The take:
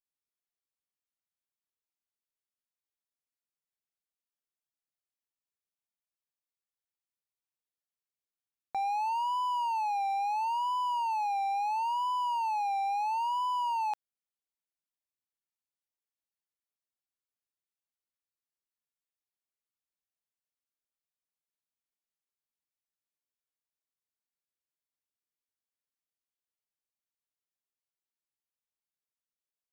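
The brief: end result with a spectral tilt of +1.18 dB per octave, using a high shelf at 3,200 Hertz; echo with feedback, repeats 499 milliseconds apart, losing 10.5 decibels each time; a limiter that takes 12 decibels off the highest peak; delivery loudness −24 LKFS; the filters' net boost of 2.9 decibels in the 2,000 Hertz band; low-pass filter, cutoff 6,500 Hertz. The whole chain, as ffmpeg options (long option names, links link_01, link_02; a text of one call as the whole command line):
ffmpeg -i in.wav -af "lowpass=6500,equalizer=frequency=2000:width_type=o:gain=9,highshelf=frequency=3200:gain=-8.5,alimiter=level_in=13dB:limit=-24dB:level=0:latency=1,volume=-13dB,aecho=1:1:499|998|1497:0.299|0.0896|0.0269,volume=17dB" out.wav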